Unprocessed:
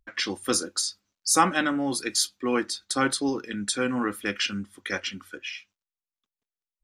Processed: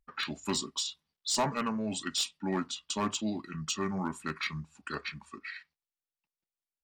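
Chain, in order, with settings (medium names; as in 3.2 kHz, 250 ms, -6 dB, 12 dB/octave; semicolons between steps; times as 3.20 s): pitch shift -4.5 st; hard clipper -16.5 dBFS, distortion -15 dB; trim -6.5 dB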